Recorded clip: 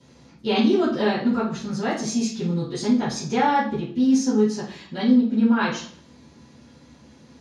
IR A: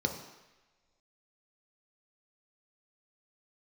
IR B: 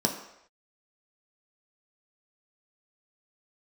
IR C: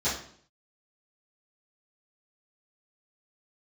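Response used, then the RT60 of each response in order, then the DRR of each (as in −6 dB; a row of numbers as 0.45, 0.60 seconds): C; non-exponential decay, non-exponential decay, 0.55 s; 3.5, 1.0, −14.5 decibels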